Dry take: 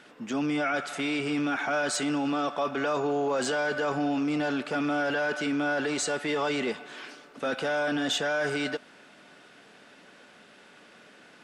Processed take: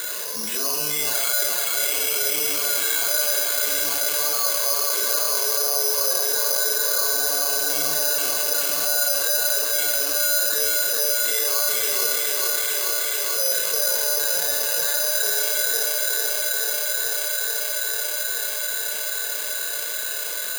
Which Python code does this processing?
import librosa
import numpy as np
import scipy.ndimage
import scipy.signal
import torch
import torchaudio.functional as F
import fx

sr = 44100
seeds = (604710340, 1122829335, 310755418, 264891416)

p1 = scipy.signal.sosfilt(scipy.signal.butter(8, 150.0, 'highpass', fs=sr, output='sos'), x)
p2 = fx.low_shelf(p1, sr, hz=320.0, db=-9.0)
p3 = fx.hum_notches(p2, sr, base_hz=60, count=4)
p4 = p3 + 0.78 * np.pad(p3, (int(1.9 * sr / 1000.0), 0))[:len(p3)]
p5 = fx.rider(p4, sr, range_db=3, speed_s=0.5)
p6 = p4 + (p5 * librosa.db_to_amplitude(-0.5))
p7 = np.clip(10.0 ** (14.0 / 20.0) * p6, -1.0, 1.0) / 10.0 ** (14.0 / 20.0)
p8 = fx.stretch_vocoder_free(p7, sr, factor=1.8)
p9 = fx.echo_thinned(p8, sr, ms=435, feedback_pct=82, hz=230.0, wet_db=-4.5)
p10 = fx.rev_schroeder(p9, sr, rt60_s=0.79, comb_ms=26, drr_db=2.5)
p11 = (np.kron(scipy.signal.resample_poly(p10, 1, 8), np.eye(8)[0]) * 8)[:len(p10)]
p12 = fx.env_flatten(p11, sr, amount_pct=70)
y = p12 * librosa.db_to_amplitude(-14.5)